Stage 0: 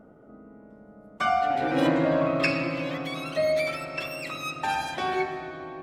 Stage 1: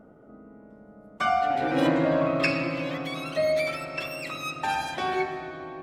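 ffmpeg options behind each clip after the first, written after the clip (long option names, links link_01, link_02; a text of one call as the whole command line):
ffmpeg -i in.wav -af anull out.wav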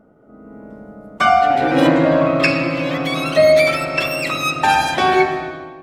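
ffmpeg -i in.wav -af "dynaudnorm=framelen=140:gausssize=7:maxgain=14.5dB" out.wav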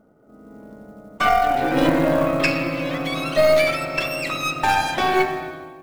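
ffmpeg -i in.wav -af "acrusher=bits=7:mode=log:mix=0:aa=0.000001,aeval=exprs='0.841*(cos(1*acos(clip(val(0)/0.841,-1,1)))-cos(1*PI/2))+0.237*(cos(2*acos(clip(val(0)/0.841,-1,1)))-cos(2*PI/2))':channel_layout=same,volume=-4.5dB" out.wav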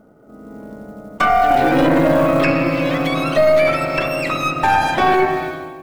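ffmpeg -i in.wav -filter_complex "[0:a]acrossover=split=2200[link_01][link_02];[link_02]acompressor=threshold=-37dB:ratio=6[link_03];[link_01][link_03]amix=inputs=2:normalize=0,alimiter=limit=-12dB:level=0:latency=1:release=14,volume=7dB" out.wav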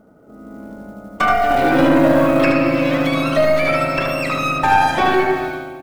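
ffmpeg -i in.wav -af "aecho=1:1:76:0.596,volume=-1dB" out.wav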